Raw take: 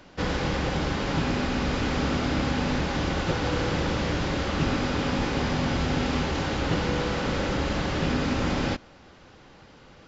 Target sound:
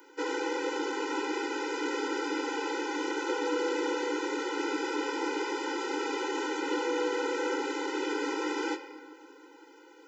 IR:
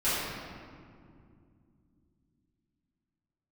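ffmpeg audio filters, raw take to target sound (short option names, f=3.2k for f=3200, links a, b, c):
-filter_complex "[0:a]aemphasis=mode=production:type=50fm,asplit=2[a][b];[1:a]atrim=start_sample=2205,lowshelf=f=350:g=-9.5[c];[b][c]afir=irnorm=-1:irlink=0,volume=-20dB[d];[a][d]amix=inputs=2:normalize=0,acontrast=72,equalizer=f=4.3k:t=o:w=1.4:g=-10,afftfilt=real='re*eq(mod(floor(b*sr/1024/260),2),1)':imag='im*eq(mod(floor(b*sr/1024/260),2),1)':win_size=1024:overlap=0.75,volume=-6.5dB"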